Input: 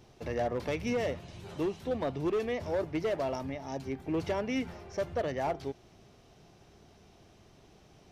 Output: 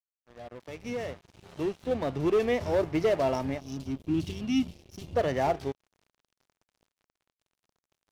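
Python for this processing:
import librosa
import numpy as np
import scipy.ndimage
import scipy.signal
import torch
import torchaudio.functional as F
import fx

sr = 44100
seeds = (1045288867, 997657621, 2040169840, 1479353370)

y = fx.fade_in_head(x, sr, length_s=2.64)
y = fx.ellip_bandstop(y, sr, low_hz=310.0, high_hz=2800.0, order=3, stop_db=40, at=(3.59, 5.14), fade=0.02)
y = np.sign(y) * np.maximum(np.abs(y) - 10.0 ** (-50.5 / 20.0), 0.0)
y = fx.hpss(y, sr, part='harmonic', gain_db=4)
y = y * librosa.db_to_amplitude(4.0)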